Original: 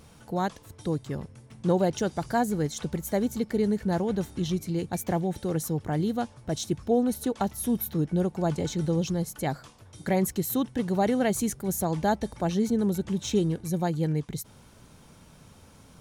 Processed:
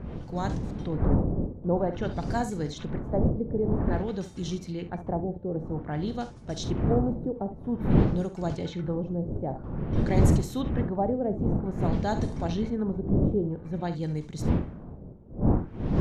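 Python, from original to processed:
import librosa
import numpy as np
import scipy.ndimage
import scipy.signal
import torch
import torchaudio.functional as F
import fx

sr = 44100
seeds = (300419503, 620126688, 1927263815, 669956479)

y = fx.dmg_wind(x, sr, seeds[0], corner_hz=200.0, level_db=-25.0)
y = fx.room_early_taps(y, sr, ms=(46, 69), db=(-13.0, -13.5))
y = fx.filter_lfo_lowpass(y, sr, shape='sine', hz=0.51, low_hz=520.0, high_hz=7200.0, q=1.4)
y = F.gain(torch.from_numpy(y), -4.5).numpy()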